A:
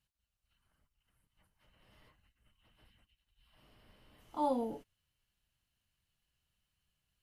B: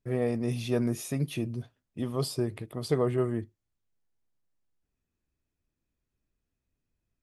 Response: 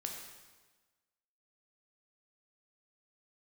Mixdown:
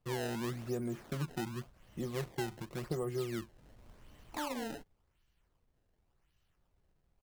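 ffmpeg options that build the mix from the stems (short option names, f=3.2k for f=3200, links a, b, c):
-filter_complex "[0:a]acompressor=threshold=-39dB:ratio=6,volume=2.5dB[a];[1:a]aecho=1:1:5.6:0.63,acrossover=split=190|1800[b][c][d];[b]acompressor=threshold=-43dB:ratio=4[e];[c]acompressor=threshold=-31dB:ratio=4[f];[d]acompressor=threshold=-52dB:ratio=4[g];[e][f][g]amix=inputs=3:normalize=0,volume=-5dB[h];[a][h]amix=inputs=2:normalize=0,lowshelf=f=110:g=8,acrusher=samples=22:mix=1:aa=0.000001:lfo=1:lforange=35.2:lforate=0.9"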